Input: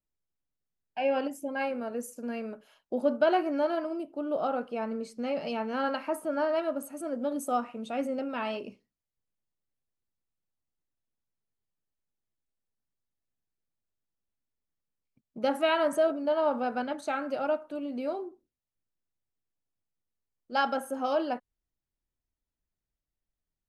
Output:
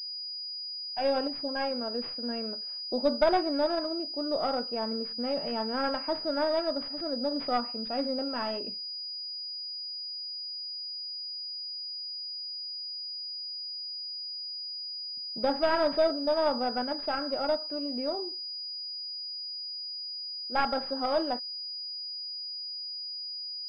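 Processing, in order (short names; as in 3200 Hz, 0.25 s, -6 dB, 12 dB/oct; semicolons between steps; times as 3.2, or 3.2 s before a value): tracing distortion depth 0.22 ms; pulse-width modulation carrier 4900 Hz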